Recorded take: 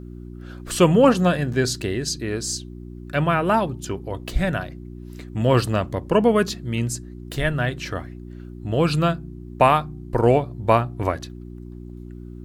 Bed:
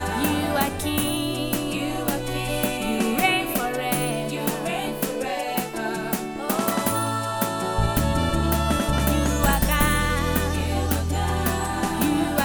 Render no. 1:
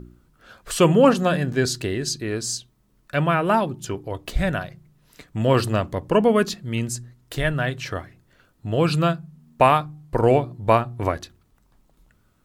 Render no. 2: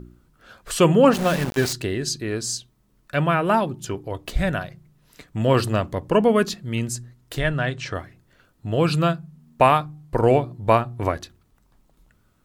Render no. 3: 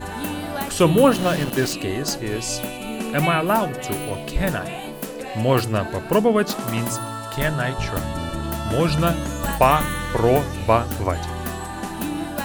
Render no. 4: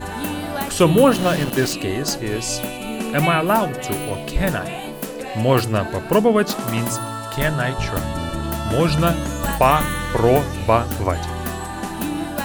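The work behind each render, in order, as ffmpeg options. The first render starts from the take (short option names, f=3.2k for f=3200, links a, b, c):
-af "bandreject=f=60:t=h:w=4,bandreject=f=120:t=h:w=4,bandreject=f=180:t=h:w=4,bandreject=f=240:t=h:w=4,bandreject=f=300:t=h:w=4,bandreject=f=360:t=h:w=4"
-filter_complex "[0:a]asettb=1/sr,asplit=3[a][b][c];[a]atrim=end=1.134[d];[b]atrim=start=1.13:end=1.73,asetpts=PTS-STARTPTS,afade=t=in:d=0.004:c=qsin,afade=t=out:st=0.596:d=0.004:c=qsin,aeval=exprs='val(0)*gte(abs(val(0)),0.0596)':c=same[e];[c]atrim=start=1.726[f];[d][e]acrossfade=d=0.004:c1=hsin:c2=qsin[g];[g][f]acrossfade=d=0.004:c1=qsin:c2=hsin,asettb=1/sr,asplit=3[h][i][j];[h]atrim=end=7.394[k];[i]atrim=start=7.39:end=7.94,asetpts=PTS-STARTPTS,afade=t=in:d=0.004:c=qsin,afade=t=out:st=0.546:d=0.004:c=qsin,lowpass=f=8.5k:w=0.5412,lowpass=f=8.5k:w=1.3066[l];[j]atrim=start=7.936[m];[k][l]acrossfade=d=0.004:c1=hsin:c2=qsin[n];[n][m]acrossfade=d=0.004:c1=qsin:c2=hsin"
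-filter_complex "[1:a]volume=-5dB[a];[0:a][a]amix=inputs=2:normalize=0"
-af "volume=2dB,alimiter=limit=-3dB:level=0:latency=1"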